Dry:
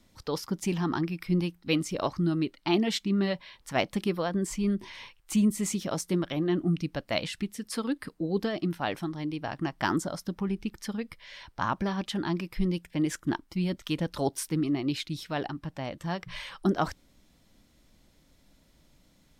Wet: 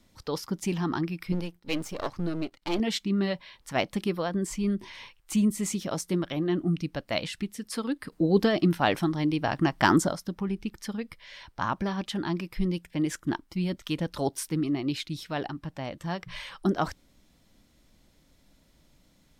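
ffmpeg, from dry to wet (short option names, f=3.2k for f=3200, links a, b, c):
-filter_complex "[0:a]asettb=1/sr,asplit=3[a][b][c];[a]atrim=end=1.324[d];[b]atrim=start=1.32:end=2.8,asetpts=PTS-STARTPTS,afade=t=in:d=0.004:c=qsin,afade=t=out:st=1.476:d=0.004:c=qsin,aeval=exprs='if(lt(val(0),0),0.251*val(0),val(0))':c=same[e];[c]atrim=start=2.796[f];[d][e]acrossfade=d=0.004:c1=hsin:c2=qsin[g];[g][f]acrossfade=d=0.004:c1=qsin:c2=hsin,asettb=1/sr,asplit=3[h][i][j];[h]atrim=end=8.124[k];[i]atrim=start=8.12:end=10.13,asetpts=PTS-STARTPTS,afade=t=in:d=0.004:c=qsin,afade=t=out:st=2.006:d=0.004:c=qsin,acontrast=78[l];[j]atrim=start=10.126[m];[k][l]acrossfade=d=0.004:c1=hsin:c2=qsin[n];[n][m]acrossfade=d=0.004:c1=qsin:c2=hsin"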